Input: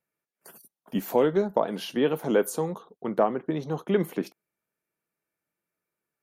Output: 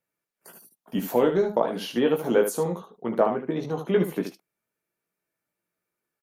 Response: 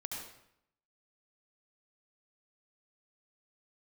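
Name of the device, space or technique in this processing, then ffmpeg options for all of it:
slapback doubling: -filter_complex "[0:a]asplit=3[a][b][c];[b]adelay=17,volume=-5dB[d];[c]adelay=75,volume=-8dB[e];[a][d][e]amix=inputs=3:normalize=0"

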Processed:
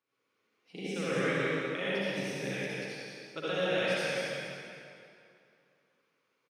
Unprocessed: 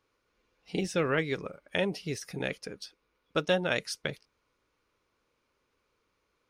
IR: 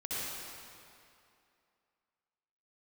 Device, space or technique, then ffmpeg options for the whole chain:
PA in a hall: -filter_complex "[0:a]highpass=f=130:w=0.5412,highpass=f=130:w=1.3066,equalizer=f=2.3k:t=o:w=1.2:g=4,aecho=1:1:183:0.631[a];[1:a]atrim=start_sample=2205[b];[a][b]afir=irnorm=-1:irlink=0,volume=-8dB"

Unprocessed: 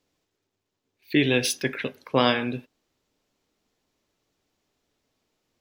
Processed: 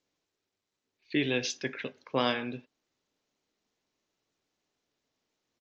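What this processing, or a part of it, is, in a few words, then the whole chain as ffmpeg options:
Bluetooth headset: -af "highpass=f=120:p=1,aresample=16000,aresample=44100,volume=-7dB" -ar 16000 -c:a sbc -b:a 64k

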